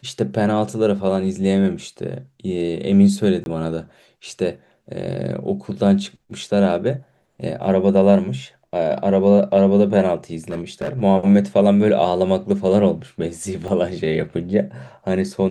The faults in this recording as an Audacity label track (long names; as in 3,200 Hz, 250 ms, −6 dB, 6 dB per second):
3.440000	3.460000	drop-out 21 ms
10.500000	11.020000	clipping −20 dBFS
13.680000	13.680000	drop-out 2.1 ms